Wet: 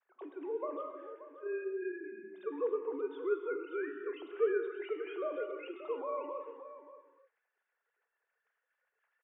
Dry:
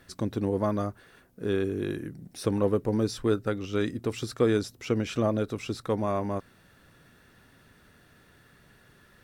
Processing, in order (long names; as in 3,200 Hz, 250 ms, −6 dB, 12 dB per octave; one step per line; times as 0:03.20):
three sine waves on the formant tracks
downward expander −57 dBFS
three-way crossover with the lows and the highs turned down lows −15 dB, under 400 Hz, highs −21 dB, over 2,800 Hz
on a send: single-tap delay 580 ms −13.5 dB
on the sum: reverb whose tail is shaped and stops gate 330 ms flat, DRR 4.5 dB
level −6.5 dB